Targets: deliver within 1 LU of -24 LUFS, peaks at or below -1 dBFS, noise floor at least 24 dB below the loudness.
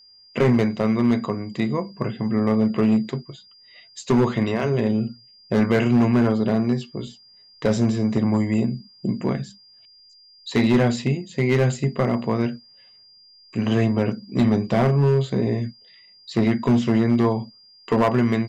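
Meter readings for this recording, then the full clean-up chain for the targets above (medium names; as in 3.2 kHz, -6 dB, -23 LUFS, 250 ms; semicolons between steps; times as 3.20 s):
clipped samples 1.7%; clipping level -12.0 dBFS; steady tone 4.8 kHz; tone level -49 dBFS; loudness -21.5 LUFS; peak level -12.0 dBFS; loudness target -24.0 LUFS
-> clip repair -12 dBFS; band-stop 4.8 kHz, Q 30; trim -2.5 dB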